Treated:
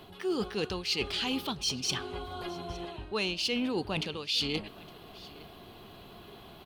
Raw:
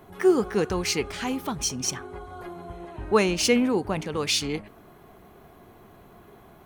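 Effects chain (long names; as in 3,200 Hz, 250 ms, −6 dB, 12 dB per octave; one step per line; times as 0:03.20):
flat-topped bell 3,600 Hz +13.5 dB 1.1 octaves
reversed playback
downward compressor 8 to 1, threshold −28 dBFS, peak gain reduction 18 dB
reversed playback
single-tap delay 862 ms −22 dB
soft clipping −17 dBFS, distortion −28 dB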